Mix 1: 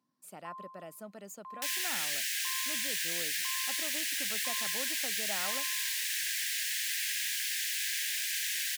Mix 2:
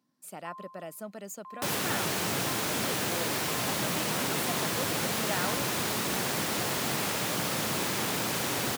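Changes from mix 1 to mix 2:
speech +5.5 dB; second sound: remove Chebyshev high-pass 1.6 kHz, order 8

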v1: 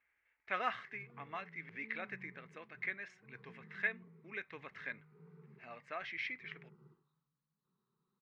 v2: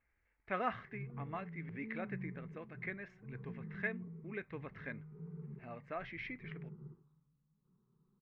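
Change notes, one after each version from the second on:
master: add tilt EQ -4.5 dB/octave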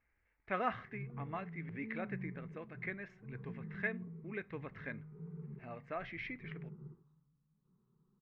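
reverb: on, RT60 0.55 s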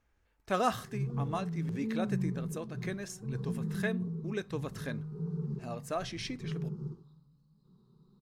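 speech -3.5 dB; master: remove four-pole ladder low-pass 2.3 kHz, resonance 70%

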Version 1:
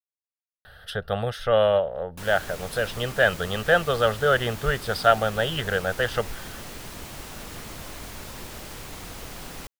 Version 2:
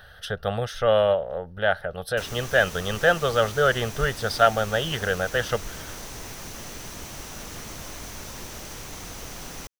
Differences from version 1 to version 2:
speech: entry -0.65 s; master: add peaking EQ 6 kHz +9.5 dB 0.23 oct

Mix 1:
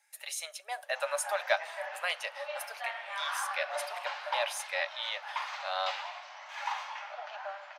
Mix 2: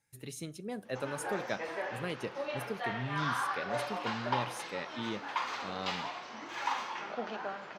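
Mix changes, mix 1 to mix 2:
speech -11.0 dB; master: remove rippled Chebyshev high-pass 570 Hz, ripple 3 dB

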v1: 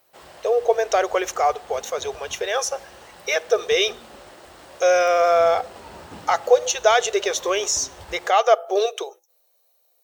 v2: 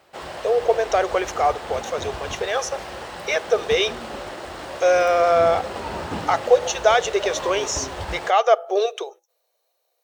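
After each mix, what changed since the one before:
background +11.5 dB; master: add treble shelf 7.9 kHz -12 dB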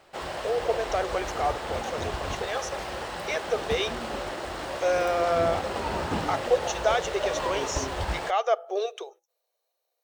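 speech -8.0 dB; master: remove high-pass 51 Hz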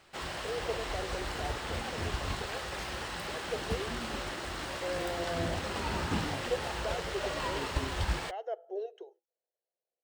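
speech: add boxcar filter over 37 samples; master: add peaking EQ 610 Hz -9 dB 1.6 oct

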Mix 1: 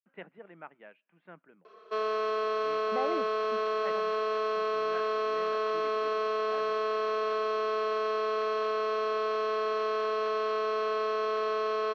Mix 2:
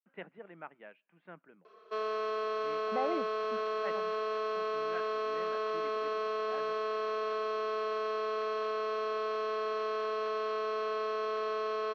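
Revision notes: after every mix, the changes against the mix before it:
background -4.0 dB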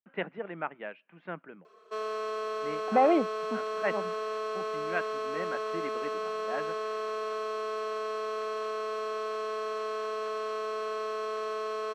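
speech +11.5 dB; master: remove low-pass 5 kHz 24 dB/octave

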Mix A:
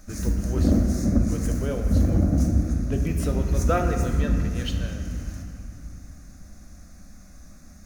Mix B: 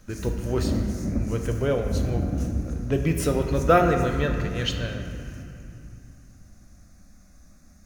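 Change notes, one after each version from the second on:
speech +6.5 dB; background -6.0 dB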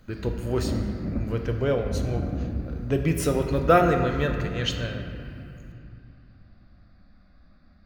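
background: add rippled Chebyshev low-pass 4.8 kHz, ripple 3 dB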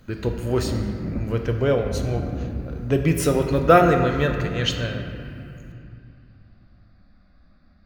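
speech +4.0 dB

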